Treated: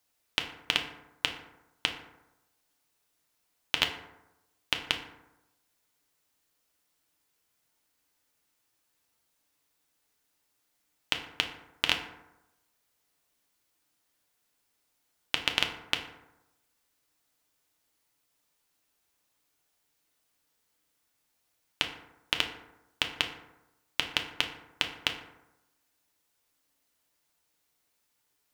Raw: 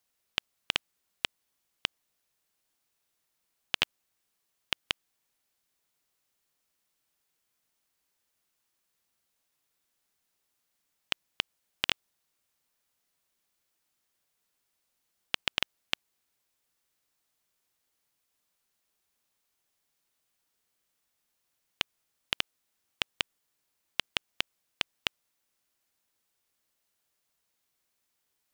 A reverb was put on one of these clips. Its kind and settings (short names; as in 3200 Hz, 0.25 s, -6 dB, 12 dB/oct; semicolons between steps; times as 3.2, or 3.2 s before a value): FDN reverb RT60 0.94 s, low-frequency decay 1×, high-frequency decay 0.45×, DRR 3 dB; gain +2 dB